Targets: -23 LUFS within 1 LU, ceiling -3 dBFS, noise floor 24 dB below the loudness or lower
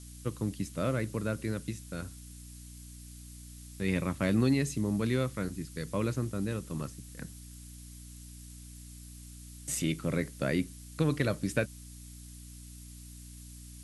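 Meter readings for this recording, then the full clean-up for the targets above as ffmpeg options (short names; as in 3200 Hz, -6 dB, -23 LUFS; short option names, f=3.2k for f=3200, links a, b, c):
hum 60 Hz; harmonics up to 300 Hz; hum level -46 dBFS; noise floor -48 dBFS; noise floor target -57 dBFS; loudness -32.5 LUFS; peak -14.5 dBFS; loudness target -23.0 LUFS
-> -af "bandreject=f=60:t=h:w=4,bandreject=f=120:t=h:w=4,bandreject=f=180:t=h:w=4,bandreject=f=240:t=h:w=4,bandreject=f=300:t=h:w=4"
-af "afftdn=nr=9:nf=-48"
-af "volume=9.5dB"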